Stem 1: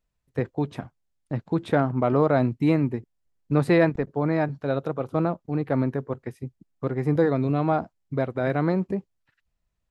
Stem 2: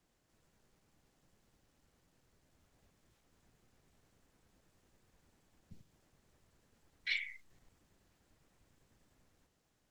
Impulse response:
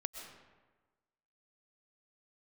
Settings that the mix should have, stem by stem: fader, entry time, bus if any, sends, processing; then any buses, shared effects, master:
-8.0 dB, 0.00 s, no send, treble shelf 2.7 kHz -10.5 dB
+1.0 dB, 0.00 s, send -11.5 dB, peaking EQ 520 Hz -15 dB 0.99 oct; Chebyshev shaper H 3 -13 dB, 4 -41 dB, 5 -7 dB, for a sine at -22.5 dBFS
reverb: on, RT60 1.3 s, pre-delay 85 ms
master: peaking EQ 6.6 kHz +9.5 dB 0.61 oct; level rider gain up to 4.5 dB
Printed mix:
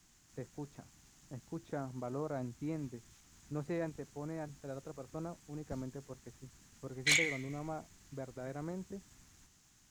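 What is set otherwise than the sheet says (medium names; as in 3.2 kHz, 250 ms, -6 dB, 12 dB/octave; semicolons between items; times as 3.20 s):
stem 1 -8.0 dB -> -18.5 dB; master: missing level rider gain up to 4.5 dB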